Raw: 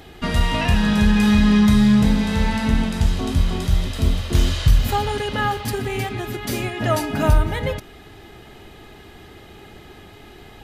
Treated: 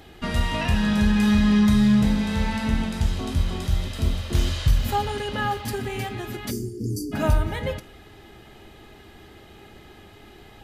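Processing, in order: spectral selection erased 6.51–7.12 s, 500–4500 Hz; two-slope reverb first 0.33 s, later 1.8 s, from -21 dB, DRR 12 dB; trim -4.5 dB

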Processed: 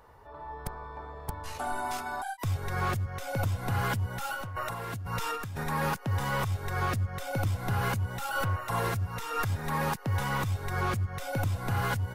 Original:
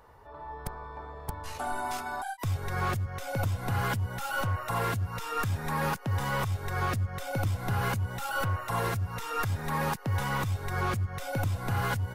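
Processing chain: 4.33–5.64 s: compressor with a negative ratio -35 dBFS, ratio -1

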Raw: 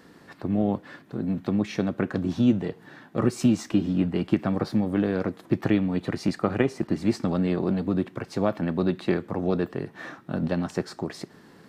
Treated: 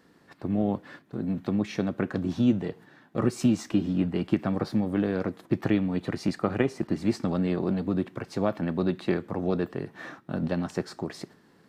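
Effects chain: gate -44 dBFS, range -6 dB; trim -2 dB

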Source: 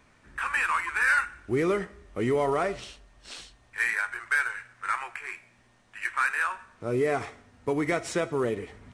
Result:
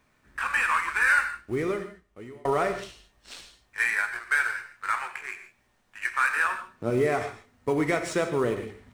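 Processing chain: companding laws mixed up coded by A; 1.05–2.45 s: fade out; 6.36–6.90 s: peaking EQ 210 Hz +6.5 dB 2.3 oct; gated-style reverb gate 180 ms flat, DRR 7.5 dB; trim +2 dB

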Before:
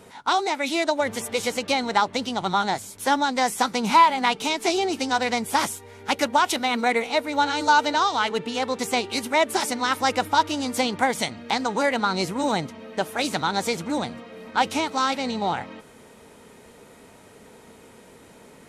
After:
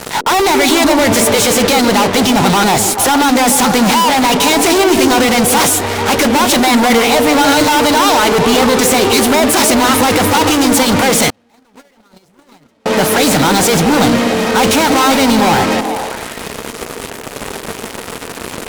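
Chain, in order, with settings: fuzz box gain 46 dB, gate -45 dBFS; repeats whose band climbs or falls 145 ms, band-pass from 330 Hz, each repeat 0.7 oct, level -2 dB; 11.30–12.86 s: gate -8 dBFS, range -42 dB; trim +3 dB

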